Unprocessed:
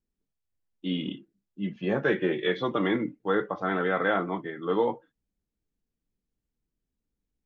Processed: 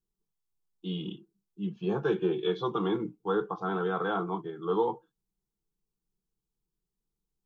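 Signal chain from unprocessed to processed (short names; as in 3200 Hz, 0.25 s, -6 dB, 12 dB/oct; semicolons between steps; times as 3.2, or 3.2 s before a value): fixed phaser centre 390 Hz, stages 8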